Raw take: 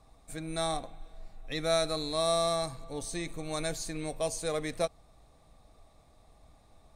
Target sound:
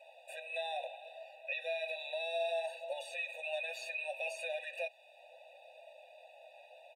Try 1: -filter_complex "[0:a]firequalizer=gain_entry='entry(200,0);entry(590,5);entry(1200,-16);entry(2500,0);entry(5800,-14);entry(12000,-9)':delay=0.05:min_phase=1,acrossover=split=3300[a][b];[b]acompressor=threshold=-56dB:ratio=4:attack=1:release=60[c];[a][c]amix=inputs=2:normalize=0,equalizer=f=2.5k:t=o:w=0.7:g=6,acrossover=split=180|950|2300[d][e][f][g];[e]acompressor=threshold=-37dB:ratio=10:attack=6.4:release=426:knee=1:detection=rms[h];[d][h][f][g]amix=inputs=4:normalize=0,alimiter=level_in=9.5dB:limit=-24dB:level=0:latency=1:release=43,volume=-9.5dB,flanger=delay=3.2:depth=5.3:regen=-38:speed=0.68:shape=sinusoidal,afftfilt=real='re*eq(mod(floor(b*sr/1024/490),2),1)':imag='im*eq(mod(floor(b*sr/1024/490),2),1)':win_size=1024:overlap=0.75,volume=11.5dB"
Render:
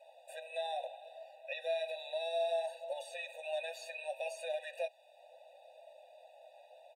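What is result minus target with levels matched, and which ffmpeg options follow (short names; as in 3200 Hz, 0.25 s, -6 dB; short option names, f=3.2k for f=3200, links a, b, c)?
2000 Hz band -5.5 dB
-filter_complex "[0:a]firequalizer=gain_entry='entry(200,0);entry(590,5);entry(1200,-16);entry(2500,0);entry(5800,-14);entry(12000,-9)':delay=0.05:min_phase=1,acrossover=split=3300[a][b];[b]acompressor=threshold=-56dB:ratio=4:attack=1:release=60[c];[a][c]amix=inputs=2:normalize=0,equalizer=f=2.5k:t=o:w=0.7:g=16,acrossover=split=180|950|2300[d][e][f][g];[e]acompressor=threshold=-37dB:ratio=10:attack=6.4:release=426:knee=1:detection=rms[h];[d][h][f][g]amix=inputs=4:normalize=0,alimiter=level_in=9.5dB:limit=-24dB:level=0:latency=1:release=43,volume=-9.5dB,flanger=delay=3.2:depth=5.3:regen=-38:speed=0.68:shape=sinusoidal,afftfilt=real='re*eq(mod(floor(b*sr/1024/490),2),1)':imag='im*eq(mod(floor(b*sr/1024/490),2),1)':win_size=1024:overlap=0.75,volume=11.5dB"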